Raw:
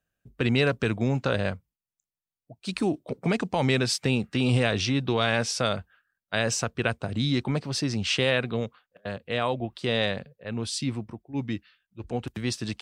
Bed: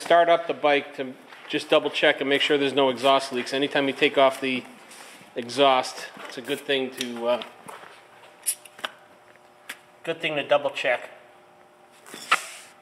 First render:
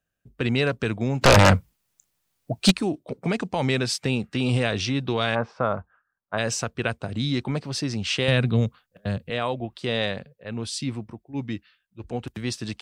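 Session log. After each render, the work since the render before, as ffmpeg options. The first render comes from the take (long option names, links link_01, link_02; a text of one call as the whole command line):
ffmpeg -i in.wav -filter_complex "[0:a]asplit=3[link_01][link_02][link_03];[link_01]afade=type=out:start_time=1.21:duration=0.02[link_04];[link_02]aeval=exprs='0.355*sin(PI/2*5.62*val(0)/0.355)':channel_layout=same,afade=type=in:start_time=1.21:duration=0.02,afade=type=out:start_time=2.7:duration=0.02[link_05];[link_03]afade=type=in:start_time=2.7:duration=0.02[link_06];[link_04][link_05][link_06]amix=inputs=3:normalize=0,asplit=3[link_07][link_08][link_09];[link_07]afade=type=out:start_time=5.34:duration=0.02[link_10];[link_08]lowpass=frequency=1100:width_type=q:width=2.3,afade=type=in:start_time=5.34:duration=0.02,afade=type=out:start_time=6.37:duration=0.02[link_11];[link_09]afade=type=in:start_time=6.37:duration=0.02[link_12];[link_10][link_11][link_12]amix=inputs=3:normalize=0,asettb=1/sr,asplit=3[link_13][link_14][link_15];[link_13]atrim=end=8.284[link_16];[link_14]atrim=start=8.28:end=9.3,asetpts=PTS-STARTPTS,afade=type=in:duration=0.004:curve=qsin,afade=type=out:start_time=1.016:duration=0.004:curve=qsin,bass=frequency=250:gain=13,treble=frequency=4000:gain=7[link_17];[link_15]atrim=start=9.296[link_18];[link_16][link_17]acrossfade=duration=0.004:curve1=hsin:curve2=qsin[link_19];[link_19][link_18]acrossfade=duration=0.004:curve1=qsin:curve2=hsin" out.wav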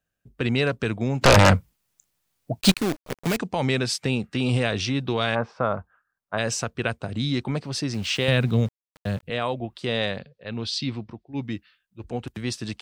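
ffmpeg -i in.wav -filter_complex "[0:a]asettb=1/sr,asplit=3[link_01][link_02][link_03];[link_01]atrim=end=2.614[link_04];[link_02]atrim=start=2.61:end=3.37,asetpts=PTS-STARTPTS,afade=type=in:duration=0.004:curve=qsin,afade=type=out:start_time=0.756:duration=0.004:curve=qsin,acrusher=bits=5:dc=4:mix=0:aa=0.000001[link_05];[link_03]atrim=start=3.366[link_06];[link_04][link_05]acrossfade=duration=0.004:curve1=hsin:curve2=qsin[link_07];[link_07][link_06]acrossfade=duration=0.004:curve1=qsin:curve2=hsin,asettb=1/sr,asplit=3[link_08][link_09][link_10];[link_08]atrim=end=7.944[link_11];[link_09]atrim=start=7.94:end=9.23,asetpts=PTS-STARTPTS,afade=type=in:duration=0.004:curve=qsin,afade=type=out:start_time=1.286:duration=0.004:curve=qsin,aeval=exprs='val(0)*gte(abs(val(0)),0.00891)':channel_layout=same[link_12];[link_10]atrim=start=9.226[link_13];[link_11][link_12]acrossfade=duration=0.004:curve1=hsin:curve2=qsin[link_14];[link_14][link_13]acrossfade=duration=0.004:curve1=qsin:curve2=hsin,asettb=1/sr,asplit=3[link_15][link_16][link_17];[link_15]atrim=end=10.184[link_18];[link_16]atrim=start=10.18:end=11.43,asetpts=PTS-STARTPTS,afade=type=in:duration=0.004:curve=qsin,afade=type=out:start_time=1.246:duration=0.004:curve=qsin,lowpass=frequency=4300:width_type=q:width=2.1[link_19];[link_17]atrim=start=11.426[link_20];[link_18][link_19]acrossfade=duration=0.004:curve1=hsin:curve2=qsin[link_21];[link_21][link_20]acrossfade=duration=0.004:curve1=qsin:curve2=hsin" out.wav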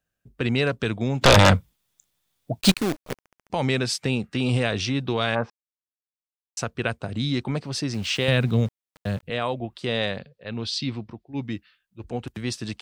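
ffmpeg -i in.wav -filter_complex "[0:a]asettb=1/sr,asplit=3[link_01][link_02][link_03];[link_01]atrim=end=0.794[link_04];[link_02]atrim=start=0.79:end=2.58,asetpts=PTS-STARTPTS,afade=type=in:duration=0.004:curve=qsin,afade=type=out:start_time=1.786:duration=0.004:curve=qsin,equalizer=frequency=3500:width_type=o:width=0.23:gain=8[link_05];[link_03]atrim=start=2.576[link_06];[link_04][link_05]acrossfade=duration=0.004:curve1=hsin:curve2=qsin[link_07];[link_07][link_06]acrossfade=duration=0.004:curve1=qsin:curve2=hsin,asplit=8[link_08][link_09][link_10][link_11][link_12][link_13][link_14][link_15];[link_08]atrim=end=3.222[link_16];[link_09]atrim=start=3.148:end=3.222[link_17];[link_10]atrim=start=3.148:end=3.222[link_18];[link_11]atrim=start=3.148:end=3.222[link_19];[link_12]atrim=start=3.148:end=3.222[link_20];[link_13]atrim=start=3.498:end=5.5,asetpts=PTS-STARTPTS,afade=type=out:start_time=1.998:duration=0.004:curve=hsin[link_21];[link_14]atrim=start=5.5:end=6.57,asetpts=PTS-STARTPTS,volume=0[link_22];[link_15]atrim=start=6.57,asetpts=PTS-STARTPTS,afade=type=in:duration=0.004:curve=hsin[link_23];[link_16][link_17]acrossfade=duration=0.004:curve1=hsin:curve2=hsin[link_24];[link_24][link_18]acrossfade=duration=0.004:curve1=hsin:curve2=hsin[link_25];[link_25][link_19]acrossfade=duration=0.004:curve1=hsin:curve2=hsin[link_26];[link_26][link_20]acrossfade=duration=0.004:curve1=hsin:curve2=hsin[link_27];[link_21][link_22][link_23]concat=n=3:v=0:a=1[link_28];[link_27][link_28]acrossfade=duration=0.004:curve1=hsin:curve2=hsin" out.wav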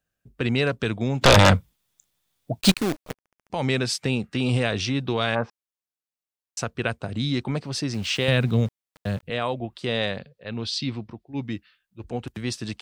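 ffmpeg -i in.wav -filter_complex "[0:a]asplit=2[link_01][link_02];[link_01]atrim=end=3.12,asetpts=PTS-STARTPTS,afade=type=out:start_time=3.116:duration=0.004:curve=hsin:silence=0.0630957[link_03];[link_02]atrim=start=3.12,asetpts=PTS-STARTPTS,afade=type=in:duration=0.59:silence=0.0630957[link_04];[link_03][link_04]concat=n=2:v=0:a=1" out.wav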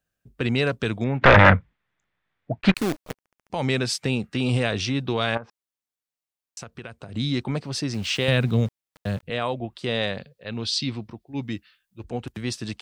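ffmpeg -i in.wav -filter_complex "[0:a]asettb=1/sr,asplit=3[link_01][link_02][link_03];[link_01]atrim=end=1.044[link_04];[link_02]atrim=start=1.04:end=2.76,asetpts=PTS-STARTPTS,afade=type=in:duration=0.004:curve=qsin,afade=type=out:start_time=1.716:duration=0.004:curve=qsin,lowpass=frequency=1900:width_type=q:width=2.3[link_05];[link_03]atrim=start=2.756[link_06];[link_04][link_05]acrossfade=duration=0.004:curve1=hsin:curve2=qsin[link_07];[link_07][link_06]acrossfade=duration=0.004:curve1=qsin:curve2=hsin,asettb=1/sr,asplit=3[link_08][link_09][link_10];[link_08]atrim=end=5.374[link_11];[link_09]atrim=start=5.37:end=7.14,asetpts=PTS-STARTPTS,afade=type=in:duration=0.004:curve=qsin,afade=type=out:start_time=1.766:duration=0.004:curve=qsin,acompressor=threshold=-35dB:ratio=4:attack=3.2:release=140:knee=1:detection=peak[link_12];[link_10]atrim=start=7.136[link_13];[link_11][link_12]acrossfade=duration=0.004:curve1=hsin:curve2=qsin[link_14];[link_14][link_13]acrossfade=duration=0.004:curve1=qsin:curve2=hsin,asettb=1/sr,asplit=3[link_15][link_16][link_17];[link_15]atrim=end=10.184[link_18];[link_16]atrim=start=10.18:end=12.03,asetpts=PTS-STARTPTS,afade=type=in:duration=0.004:curve=qsin,afade=type=out:start_time=1.846:duration=0.004:curve=qsin,highshelf=frequency=4600:gain=6.5[link_19];[link_17]atrim=start=12.026[link_20];[link_18][link_19]acrossfade=duration=0.004:curve1=hsin:curve2=qsin[link_21];[link_21][link_20]acrossfade=duration=0.004:curve1=qsin:curve2=hsin" out.wav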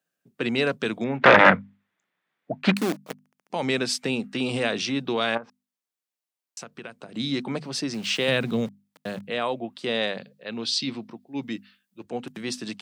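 ffmpeg -i in.wav -af "highpass=frequency=170:width=0.5412,highpass=frequency=170:width=1.3066,bandreject=frequency=50:width_type=h:width=6,bandreject=frequency=100:width_type=h:width=6,bandreject=frequency=150:width_type=h:width=6,bandreject=frequency=200:width_type=h:width=6,bandreject=frequency=250:width_type=h:width=6" out.wav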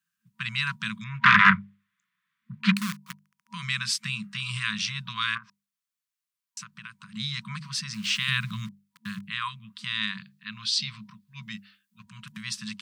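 ffmpeg -i in.wav -af "afftfilt=real='re*(1-between(b*sr/4096,220,960))':imag='im*(1-between(b*sr/4096,220,960))':win_size=4096:overlap=0.75" out.wav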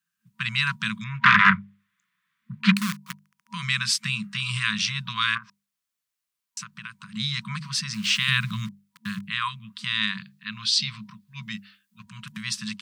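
ffmpeg -i in.wav -af "dynaudnorm=framelen=150:gausssize=3:maxgain=4dB" out.wav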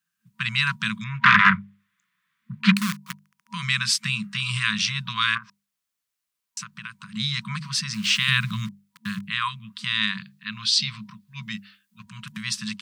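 ffmpeg -i in.wav -af "volume=1.5dB,alimiter=limit=-3dB:level=0:latency=1" out.wav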